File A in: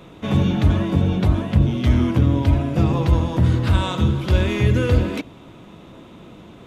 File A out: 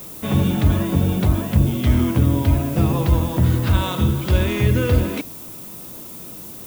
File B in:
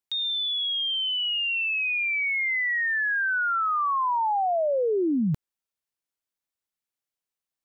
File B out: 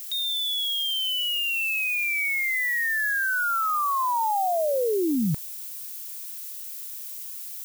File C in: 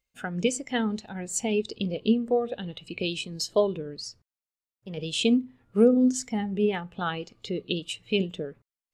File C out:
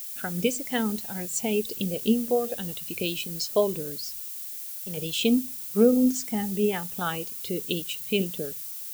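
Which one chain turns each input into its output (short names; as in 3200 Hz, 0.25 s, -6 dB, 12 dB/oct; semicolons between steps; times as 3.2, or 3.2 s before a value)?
added noise violet -37 dBFS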